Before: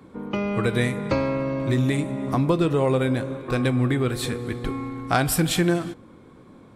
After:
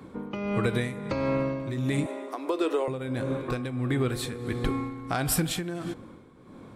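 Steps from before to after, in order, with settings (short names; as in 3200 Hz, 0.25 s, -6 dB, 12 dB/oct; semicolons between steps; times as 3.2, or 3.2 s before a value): 2.06–2.88 steep high-pass 320 Hz 36 dB/oct; compressor, threshold -24 dBFS, peak gain reduction 8.5 dB; tremolo 1.5 Hz, depth 63%; gain +2.5 dB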